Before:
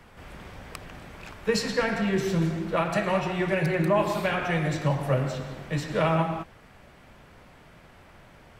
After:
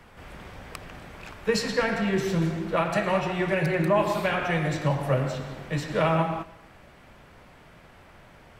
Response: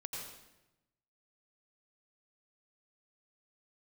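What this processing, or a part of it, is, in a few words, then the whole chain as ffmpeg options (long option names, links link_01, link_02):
filtered reverb send: -filter_complex "[0:a]asplit=2[link_01][link_02];[link_02]highpass=300,lowpass=4400[link_03];[1:a]atrim=start_sample=2205[link_04];[link_03][link_04]afir=irnorm=-1:irlink=0,volume=-14dB[link_05];[link_01][link_05]amix=inputs=2:normalize=0"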